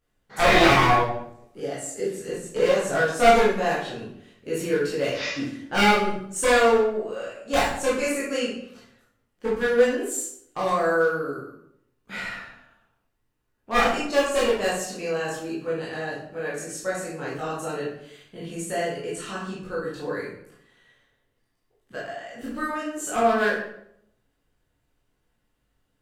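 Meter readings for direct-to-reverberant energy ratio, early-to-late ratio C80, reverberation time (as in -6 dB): -8.0 dB, 6.5 dB, 0.70 s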